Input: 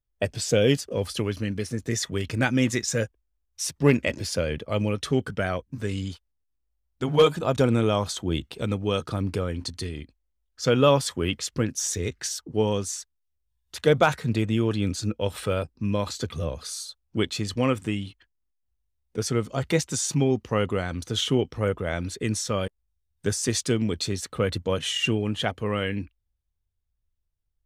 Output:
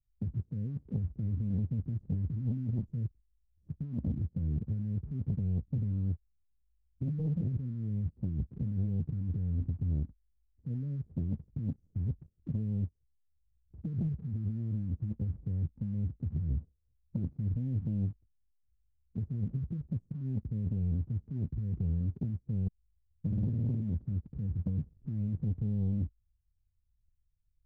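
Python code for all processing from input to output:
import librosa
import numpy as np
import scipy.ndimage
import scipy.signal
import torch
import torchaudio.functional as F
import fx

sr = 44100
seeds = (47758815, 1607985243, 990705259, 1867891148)

y = fx.chain(x, sr, fx.room_flutter(wall_m=9.1, rt60_s=1.5),
    fx.spectral_comp(ratio=2.0), at=(23.26, 23.81))
y = scipy.signal.sosfilt(scipy.signal.cheby2(4, 80, 1200.0, 'lowpass', fs=sr, output='sos'), y)
y = fx.over_compress(y, sr, threshold_db=-35.0, ratio=-1.0)
y = fx.leveller(y, sr, passes=1)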